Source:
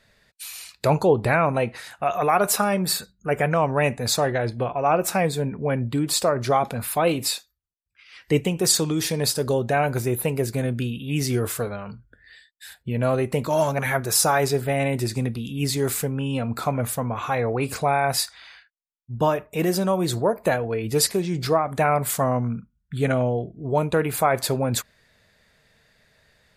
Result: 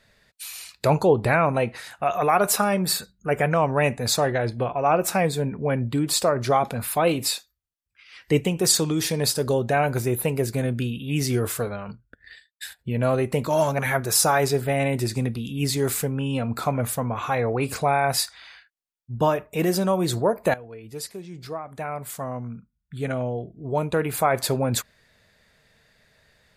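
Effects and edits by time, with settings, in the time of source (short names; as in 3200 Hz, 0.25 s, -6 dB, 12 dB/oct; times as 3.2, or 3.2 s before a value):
11.87–12.79 transient shaper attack +9 dB, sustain -10 dB
20.54–24.49 fade in quadratic, from -14.5 dB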